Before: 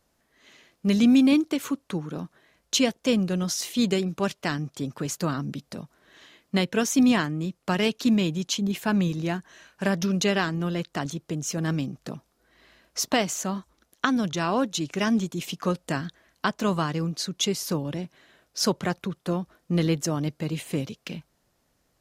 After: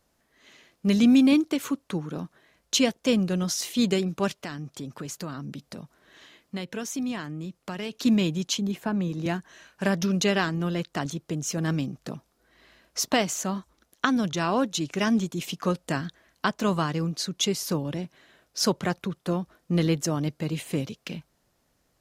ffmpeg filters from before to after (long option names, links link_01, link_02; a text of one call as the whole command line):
ffmpeg -i in.wav -filter_complex "[0:a]asettb=1/sr,asplit=3[link_01][link_02][link_03];[link_01]atrim=end=4.444[link_04];[link_02]atrim=start=4.44:end=7.93,asetpts=PTS-STARTPTS,afade=type=in:duration=0.004:curve=qsin,afade=type=out:start_time=3.486:duration=0.004:curve=qsin,acompressor=threshold=-36dB:ratio=2:attack=3.2:release=140:knee=1:detection=peak[link_05];[link_03]atrim=start=7.926[link_06];[link_04][link_05]acrossfade=duration=0.004:curve1=hsin:curve2=qsin[link_07];[link_07][link_06]acrossfade=duration=0.004:curve1=qsin:curve2=hsin,asettb=1/sr,asplit=3[link_08][link_09][link_10];[link_08]atrim=end=8.584[link_11];[link_09]atrim=start=8.58:end=9.26,asetpts=PTS-STARTPTS,afade=type=in:duration=0.004:curve=qsin,afade=type=out:start_time=0.676:duration=0.004:curve=qsin,acrossover=split=160|1500[link_12][link_13][link_14];[link_12]acompressor=threshold=-39dB:ratio=4[link_15];[link_13]acompressor=threshold=-25dB:ratio=4[link_16];[link_14]acompressor=threshold=-48dB:ratio=4[link_17];[link_15][link_16][link_17]amix=inputs=3:normalize=0[link_18];[link_10]atrim=start=9.256[link_19];[link_11][link_18]acrossfade=duration=0.004:curve1=hsin:curve2=qsin[link_20];[link_20][link_19]acrossfade=duration=0.004:curve1=qsin:curve2=hsin" out.wav